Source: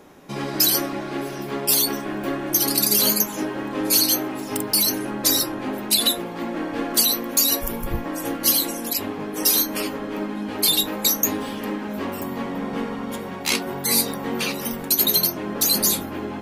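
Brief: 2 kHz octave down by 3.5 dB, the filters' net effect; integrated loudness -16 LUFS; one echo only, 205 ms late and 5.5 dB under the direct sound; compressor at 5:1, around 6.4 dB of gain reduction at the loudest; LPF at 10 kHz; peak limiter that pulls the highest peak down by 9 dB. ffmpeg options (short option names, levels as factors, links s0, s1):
-af "lowpass=10000,equalizer=f=2000:t=o:g=-4.5,acompressor=threshold=0.0631:ratio=5,alimiter=limit=0.1:level=0:latency=1,aecho=1:1:205:0.531,volume=4.22"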